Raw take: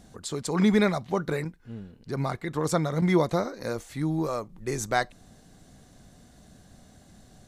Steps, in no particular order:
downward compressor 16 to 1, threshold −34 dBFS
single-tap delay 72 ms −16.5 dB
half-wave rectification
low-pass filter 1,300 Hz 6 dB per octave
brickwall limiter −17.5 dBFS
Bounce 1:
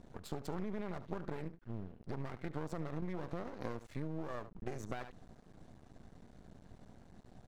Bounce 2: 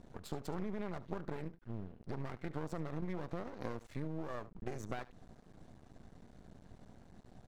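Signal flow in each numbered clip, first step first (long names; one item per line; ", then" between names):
single-tap delay, then brickwall limiter, then low-pass filter, then downward compressor, then half-wave rectification
low-pass filter, then brickwall limiter, then downward compressor, then single-tap delay, then half-wave rectification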